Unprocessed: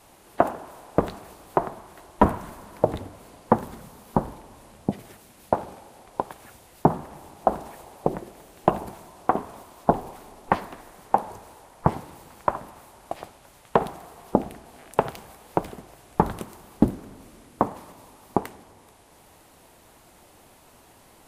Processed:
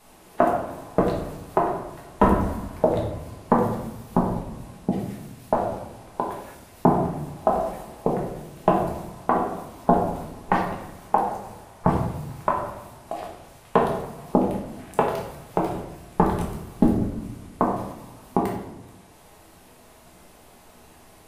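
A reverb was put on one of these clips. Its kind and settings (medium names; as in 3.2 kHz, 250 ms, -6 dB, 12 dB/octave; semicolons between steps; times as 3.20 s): simulated room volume 210 m³, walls mixed, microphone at 1.4 m; trim -2 dB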